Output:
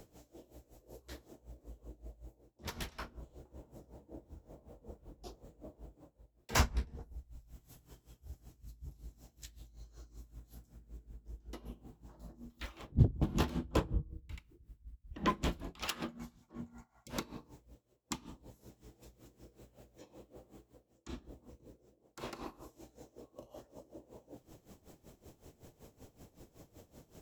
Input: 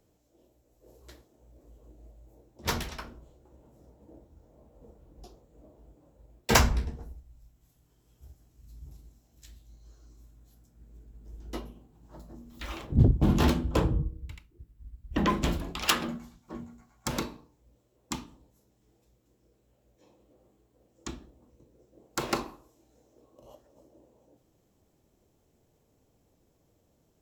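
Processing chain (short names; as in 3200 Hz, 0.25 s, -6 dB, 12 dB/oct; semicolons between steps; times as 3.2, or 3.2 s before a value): spectral repair 16.73–17.07, 630–2100 Hz before; reverse; upward compressor, threshold -32 dBFS; reverse; dB-linear tremolo 5.3 Hz, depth 18 dB; gain -4 dB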